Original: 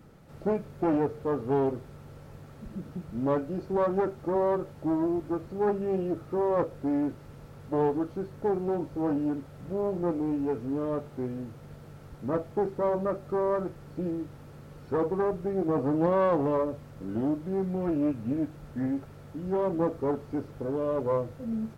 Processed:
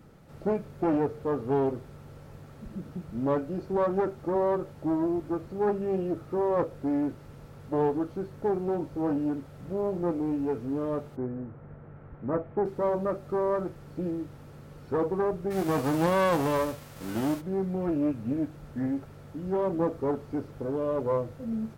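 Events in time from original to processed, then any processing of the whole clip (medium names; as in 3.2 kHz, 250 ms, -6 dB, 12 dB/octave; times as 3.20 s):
11.15–12.64 s: low-pass 1.7 kHz -> 2.3 kHz 24 dB/octave
15.50–17.40 s: formants flattened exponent 0.6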